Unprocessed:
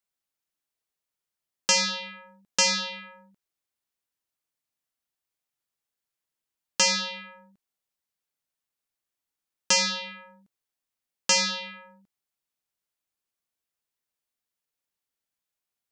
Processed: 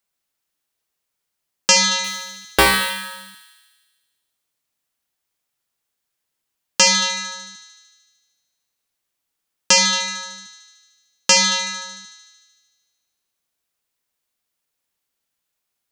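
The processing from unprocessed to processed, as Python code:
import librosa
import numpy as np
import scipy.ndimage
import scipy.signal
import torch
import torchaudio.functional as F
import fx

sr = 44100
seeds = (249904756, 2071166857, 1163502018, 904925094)

y = fx.sample_hold(x, sr, seeds[0], rate_hz=6500.0, jitter_pct=0, at=(2.04, 2.9))
y = fx.echo_thinned(y, sr, ms=75, feedback_pct=74, hz=830.0, wet_db=-9.5)
y = F.gain(torch.from_numpy(y), 8.0).numpy()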